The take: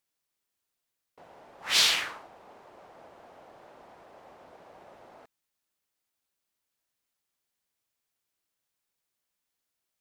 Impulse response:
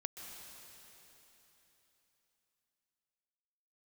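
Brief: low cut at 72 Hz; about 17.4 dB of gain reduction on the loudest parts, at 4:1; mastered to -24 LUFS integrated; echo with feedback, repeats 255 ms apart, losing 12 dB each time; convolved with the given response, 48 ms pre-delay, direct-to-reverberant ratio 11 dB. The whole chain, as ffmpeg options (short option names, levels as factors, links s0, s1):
-filter_complex "[0:a]highpass=72,acompressor=threshold=0.01:ratio=4,aecho=1:1:255|510|765:0.251|0.0628|0.0157,asplit=2[s0][s1];[1:a]atrim=start_sample=2205,adelay=48[s2];[s1][s2]afir=irnorm=-1:irlink=0,volume=0.335[s3];[s0][s3]amix=inputs=2:normalize=0,volume=11.9"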